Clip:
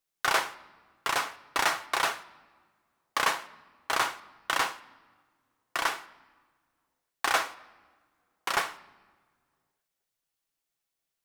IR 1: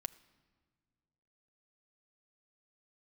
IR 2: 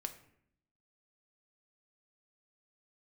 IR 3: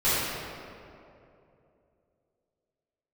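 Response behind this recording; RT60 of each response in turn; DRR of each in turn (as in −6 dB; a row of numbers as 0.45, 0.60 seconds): 1; non-exponential decay, 0.70 s, 2.8 s; 9.0, 7.0, −14.5 decibels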